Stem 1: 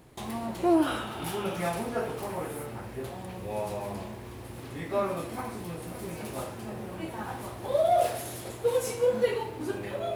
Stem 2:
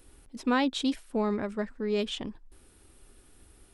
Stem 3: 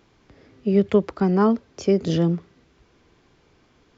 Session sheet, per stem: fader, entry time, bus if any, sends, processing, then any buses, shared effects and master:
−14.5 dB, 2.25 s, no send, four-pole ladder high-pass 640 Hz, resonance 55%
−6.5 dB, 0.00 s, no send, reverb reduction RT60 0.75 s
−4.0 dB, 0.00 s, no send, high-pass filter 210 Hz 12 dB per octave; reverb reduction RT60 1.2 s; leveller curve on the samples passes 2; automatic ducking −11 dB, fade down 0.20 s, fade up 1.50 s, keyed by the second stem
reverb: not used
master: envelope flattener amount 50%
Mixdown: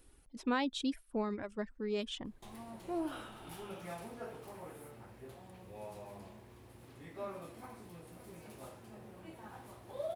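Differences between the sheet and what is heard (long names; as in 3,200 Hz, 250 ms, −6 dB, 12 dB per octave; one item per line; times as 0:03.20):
stem 1: missing four-pole ladder high-pass 640 Hz, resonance 55%
stem 3: muted
master: missing envelope flattener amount 50%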